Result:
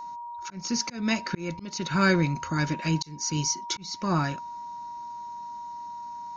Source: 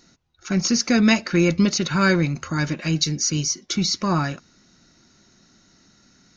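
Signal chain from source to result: whistle 950 Hz -32 dBFS; slow attack 387 ms; trim -3.5 dB

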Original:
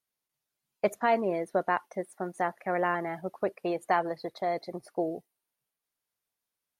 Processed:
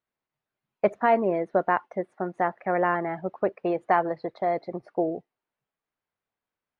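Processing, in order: low-pass 2.1 kHz 12 dB/octave; trim +4.5 dB

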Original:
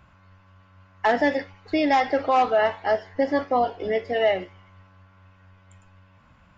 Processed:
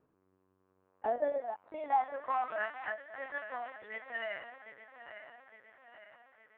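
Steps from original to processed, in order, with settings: backward echo that repeats 432 ms, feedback 72%, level -10.5 dB; LPC vocoder at 8 kHz pitch kept; band-pass sweep 370 Hz -> 1.7 kHz, 0.54–2.81 s; trim -6 dB

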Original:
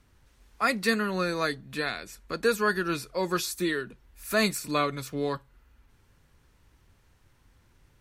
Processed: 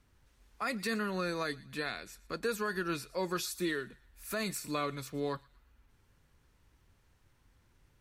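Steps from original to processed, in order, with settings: peak limiter -18 dBFS, peak gain reduction 7 dB; on a send: feedback echo behind a high-pass 117 ms, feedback 36%, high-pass 1.7 kHz, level -19 dB; on the sum: trim -5.5 dB

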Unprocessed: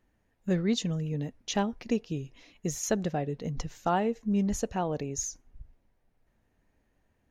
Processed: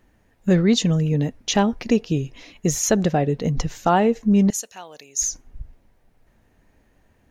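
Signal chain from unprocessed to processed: 4.50–5.22 s: differentiator; in parallel at -1.5 dB: peak limiter -23.5 dBFS, peak gain reduction 9.5 dB; on the sum: trim +6.5 dB

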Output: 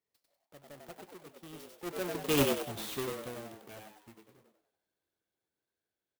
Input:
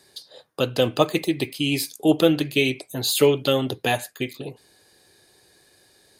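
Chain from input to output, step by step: square wave that keeps the level; Doppler pass-by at 2.44 s, 37 m/s, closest 2.2 m; frequency-shifting echo 96 ms, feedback 41%, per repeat +100 Hz, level -3.5 dB; sampling jitter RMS 0.041 ms; trim -6 dB

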